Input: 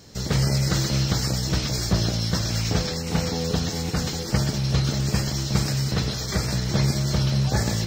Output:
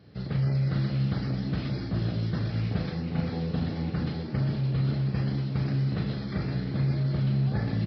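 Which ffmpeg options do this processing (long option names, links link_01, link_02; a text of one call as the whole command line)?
ffmpeg -i in.wav -filter_complex "[0:a]highpass=99,bass=frequency=250:gain=7,treble=frequency=4000:gain=-13,bandreject=frequency=950:width=11,areverse,acompressor=threshold=-17dB:ratio=6,areverse,asplit=2[link_01][link_02];[link_02]adelay=37,volume=-7dB[link_03];[link_01][link_03]amix=inputs=2:normalize=0,asplit=7[link_04][link_05][link_06][link_07][link_08][link_09][link_10];[link_05]adelay=433,afreqshift=68,volume=-12dB[link_11];[link_06]adelay=866,afreqshift=136,volume=-16.9dB[link_12];[link_07]adelay=1299,afreqshift=204,volume=-21.8dB[link_13];[link_08]adelay=1732,afreqshift=272,volume=-26.6dB[link_14];[link_09]adelay=2165,afreqshift=340,volume=-31.5dB[link_15];[link_10]adelay=2598,afreqshift=408,volume=-36.4dB[link_16];[link_04][link_11][link_12][link_13][link_14][link_15][link_16]amix=inputs=7:normalize=0,aresample=11025,aresample=44100,volume=-8dB" out.wav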